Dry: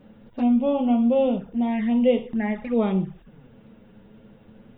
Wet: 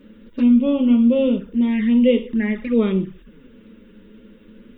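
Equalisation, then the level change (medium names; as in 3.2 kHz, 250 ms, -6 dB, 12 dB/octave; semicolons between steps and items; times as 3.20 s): static phaser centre 310 Hz, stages 4; +7.0 dB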